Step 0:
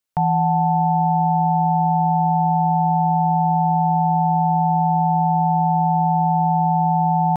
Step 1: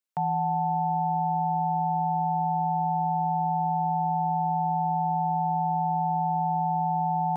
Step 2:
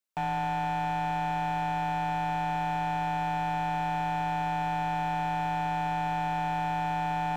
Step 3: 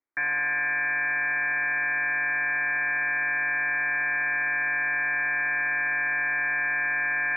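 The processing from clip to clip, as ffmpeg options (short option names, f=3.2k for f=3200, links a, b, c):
-af "highpass=180,volume=-7.5dB"
-af "asoftclip=type=hard:threshold=-27.5dB"
-af "lowpass=f=2.1k:t=q:w=0.5098,lowpass=f=2.1k:t=q:w=0.6013,lowpass=f=2.1k:t=q:w=0.9,lowpass=f=2.1k:t=q:w=2.563,afreqshift=-2500,equalizer=f=300:t=o:w=0.34:g=14.5,volume=3.5dB"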